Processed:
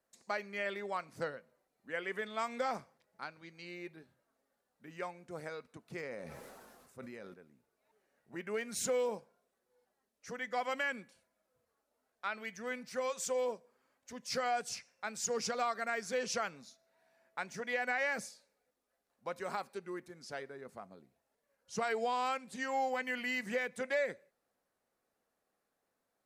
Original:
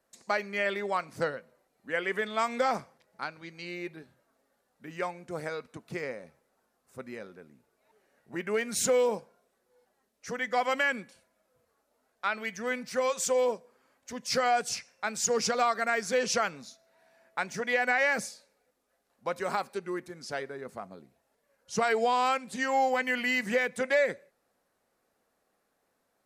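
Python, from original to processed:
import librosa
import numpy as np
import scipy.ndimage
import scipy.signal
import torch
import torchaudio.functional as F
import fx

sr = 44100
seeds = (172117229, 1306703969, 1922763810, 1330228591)

y = fx.sustainer(x, sr, db_per_s=28.0, at=(5.9, 7.34))
y = y * librosa.db_to_amplitude(-8.0)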